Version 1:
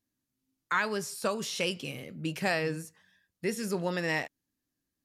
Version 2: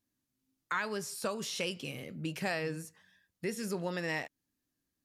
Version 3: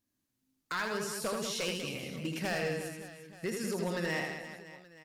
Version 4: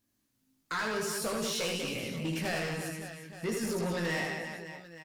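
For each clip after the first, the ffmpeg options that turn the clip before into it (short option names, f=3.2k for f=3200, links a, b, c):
-af "acompressor=threshold=-39dB:ratio=1.5"
-af "aeval=exprs='0.0447*(abs(mod(val(0)/0.0447+3,4)-2)-1)':c=same,aecho=1:1:80|192|348.8|568.3|875.6:0.631|0.398|0.251|0.158|0.1"
-filter_complex "[0:a]asoftclip=type=tanh:threshold=-34dB,asplit=2[a][b];[b]adelay=18,volume=-5.5dB[c];[a][c]amix=inputs=2:normalize=0,volume=4.5dB"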